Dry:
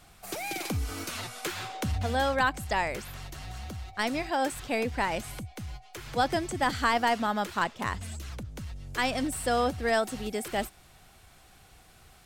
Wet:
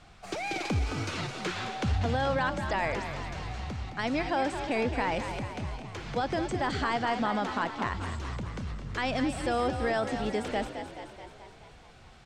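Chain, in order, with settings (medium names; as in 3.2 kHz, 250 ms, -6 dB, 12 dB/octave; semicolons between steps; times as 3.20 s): peaking EQ 8.3 kHz +4 dB 1.3 oct; peak limiter -21.5 dBFS, peak gain reduction 9 dB; distance through air 140 m; on a send: frequency-shifting echo 215 ms, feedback 62%, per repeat +41 Hz, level -9 dB; on the sum: trim +2.5 dB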